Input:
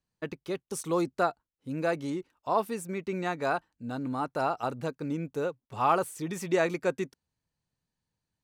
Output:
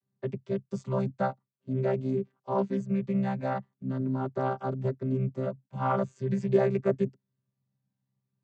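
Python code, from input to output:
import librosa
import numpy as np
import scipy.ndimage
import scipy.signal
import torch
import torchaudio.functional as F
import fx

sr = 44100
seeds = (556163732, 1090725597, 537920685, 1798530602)

y = fx.chord_vocoder(x, sr, chord='bare fifth', root=48)
y = fx.low_shelf(y, sr, hz=230.0, db=6.0)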